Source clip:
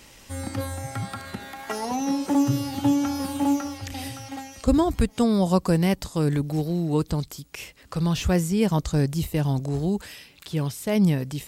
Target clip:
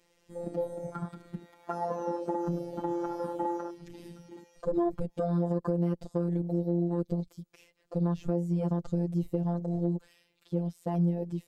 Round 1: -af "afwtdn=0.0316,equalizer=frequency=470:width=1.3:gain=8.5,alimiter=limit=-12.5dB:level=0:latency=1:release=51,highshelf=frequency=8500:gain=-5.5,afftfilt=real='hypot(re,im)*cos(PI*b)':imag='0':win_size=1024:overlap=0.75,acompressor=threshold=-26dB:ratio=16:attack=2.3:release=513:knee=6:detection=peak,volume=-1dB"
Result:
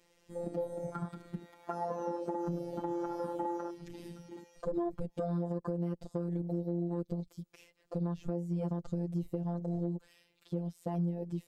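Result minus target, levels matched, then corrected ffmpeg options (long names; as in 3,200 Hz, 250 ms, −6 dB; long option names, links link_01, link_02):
downward compressor: peak gain reduction +6.5 dB
-af "afwtdn=0.0316,equalizer=frequency=470:width=1.3:gain=8.5,alimiter=limit=-12.5dB:level=0:latency=1:release=51,highshelf=frequency=8500:gain=-5.5,afftfilt=real='hypot(re,im)*cos(PI*b)':imag='0':win_size=1024:overlap=0.75,acompressor=threshold=-19dB:ratio=16:attack=2.3:release=513:knee=6:detection=peak,volume=-1dB"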